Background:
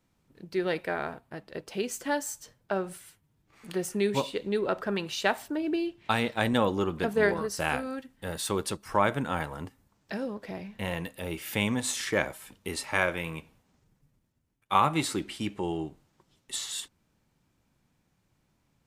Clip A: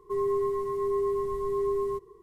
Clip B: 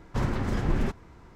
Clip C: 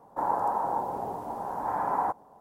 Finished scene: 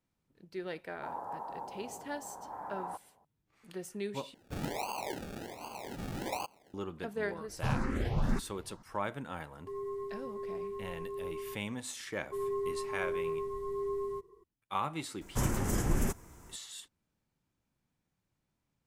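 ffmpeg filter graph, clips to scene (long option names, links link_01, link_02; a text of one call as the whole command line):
ffmpeg -i bed.wav -i cue0.wav -i cue1.wav -i cue2.wav -filter_complex "[3:a]asplit=2[link_01][link_02];[2:a]asplit=2[link_03][link_04];[1:a]asplit=2[link_05][link_06];[0:a]volume=-11dB[link_07];[link_02]acrusher=samples=34:mix=1:aa=0.000001:lfo=1:lforange=20.4:lforate=1.3[link_08];[link_03]asplit=2[link_09][link_10];[link_10]afreqshift=1.9[link_11];[link_09][link_11]amix=inputs=2:normalize=1[link_12];[link_04]aexciter=amount=12.6:drive=2.6:freq=6100[link_13];[link_07]asplit=2[link_14][link_15];[link_14]atrim=end=4.344[link_16];[link_08]atrim=end=2.4,asetpts=PTS-STARTPTS,volume=-9.5dB[link_17];[link_15]atrim=start=6.736[link_18];[link_01]atrim=end=2.4,asetpts=PTS-STARTPTS,volume=-13.5dB,afade=type=in:duration=0.004:curve=hsin,afade=type=out:start_time=2.396:duration=0.004:curve=hsin,adelay=850[link_19];[link_12]atrim=end=1.35,asetpts=PTS-STARTPTS,volume=-2dB,afade=type=in:duration=0.004:curve=hsin,afade=type=out:start_time=1.346:duration=0.004:curve=hsin,adelay=7480[link_20];[link_05]atrim=end=2.22,asetpts=PTS-STARTPTS,volume=-12dB,afade=type=in:duration=0.004:curve=hsin,afade=type=out:start_time=2.216:duration=0.004:curve=hsin,adelay=9570[link_21];[link_06]atrim=end=2.22,asetpts=PTS-STARTPTS,volume=-7.5dB,afade=type=in:duration=0.004:curve=hsin,afade=type=out:start_time=2.216:duration=0.004:curve=hsin,adelay=12220[link_22];[link_13]atrim=end=1.35,asetpts=PTS-STARTPTS,volume=-4dB,afade=type=in:duration=0.004:curve=hsin,afade=type=out:start_time=1.346:duration=0.004:curve=hsin,adelay=15210[link_23];[link_16][link_17]acrossfade=duration=0.004:curve1=hsin:curve2=hsin[link_24];[link_24][link_18]acrossfade=duration=0.004:curve1=hsin:curve2=hsin[link_25];[link_25][link_19][link_20][link_21][link_22][link_23]amix=inputs=6:normalize=0" out.wav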